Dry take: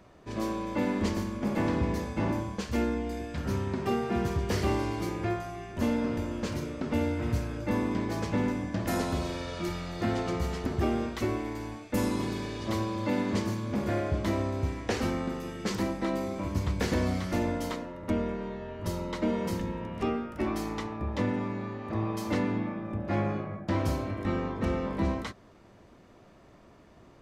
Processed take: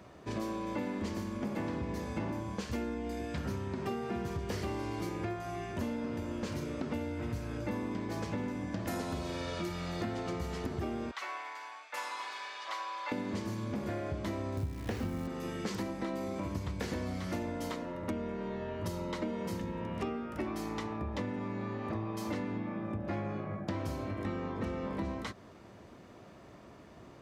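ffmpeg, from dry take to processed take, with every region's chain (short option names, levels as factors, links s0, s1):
-filter_complex "[0:a]asettb=1/sr,asplit=3[s0][s1][s2];[s0]atrim=end=11.114[s3];[s1]atrim=start=11.11:end=13.12,asetpts=PTS-STARTPTS,afade=t=in:d=0.004:c=qsin,afade=t=out:st=2.006:d=0.004:c=qsin,highpass=f=890:w=0.5412,highpass=f=890:w=1.3066,aemphasis=mode=reproduction:type=bsi[s4];[s2]atrim=start=13.116[s5];[s3][s4]acrossfade=d=0.004:c1=hsin:c2=qsin[s6];[s6][s5]acrossfade=d=0.004:c1=qsin:c2=hsin,asettb=1/sr,asplit=3[s7][s8][s9];[s7]atrim=end=14.574[s10];[s8]atrim=start=14.57:end=15.27,asetpts=PTS-STARTPTS,afade=t=in:d=0.004:c=qsin,afade=t=out:st=0.696:d=0.004:c=qsin,bass=f=250:g=10,treble=f=4000:g=-5,acrusher=bits=8:dc=4:mix=0:aa=0.000001[s11];[s9]atrim=start=15.266[s12];[s10][s11]acrossfade=d=0.004:c1=hsin:c2=qsin[s13];[s13][s12]acrossfade=d=0.004:c1=qsin:c2=hsin,highpass=61,acompressor=threshold=0.0158:ratio=6,volume=1.33"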